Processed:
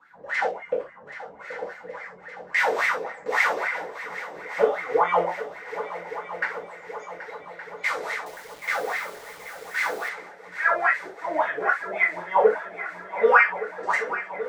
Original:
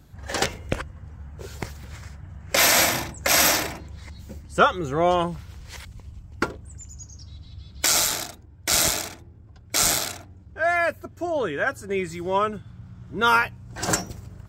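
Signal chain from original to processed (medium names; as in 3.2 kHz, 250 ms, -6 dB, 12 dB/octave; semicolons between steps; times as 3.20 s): spectral peaks clipped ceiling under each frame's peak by 12 dB; in parallel at +2 dB: peak limiter -12 dBFS, peak gain reduction 7 dB; on the sum: wah-wah 3.6 Hz 410–2100 Hz, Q 17; on a send: multi-head delay 389 ms, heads second and third, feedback 66%, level -14 dB; on the sum: gated-style reverb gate 100 ms falling, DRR -5.5 dB; 8.26–10.09 s: word length cut 8-bit, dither none; trim +3 dB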